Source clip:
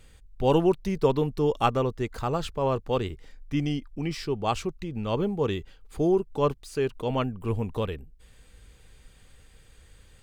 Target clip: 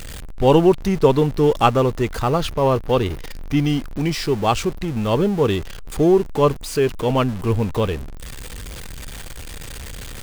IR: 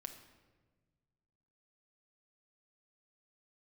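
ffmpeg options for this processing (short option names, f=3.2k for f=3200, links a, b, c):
-filter_complex "[0:a]aeval=exprs='val(0)+0.5*0.0158*sgn(val(0))':c=same,asettb=1/sr,asplit=3[a][b][c];[a]atrim=end=2.284[d];[b]atrim=start=2.28:end=3.68,asetpts=PTS-STARTPTS,afade=t=in:d=0.004:c=qsin,afade=t=out:st=1.396:d=0.004:c=qsin,bandreject=f=7.6k:w=6.9[e];[c]atrim=start=3.676[f];[d][e]acrossfade=d=0.004:c1=hsin:c2=qsin[g];[g][f]acrossfade=d=0.004:c1=qsin:c2=hsin,volume=7.5dB"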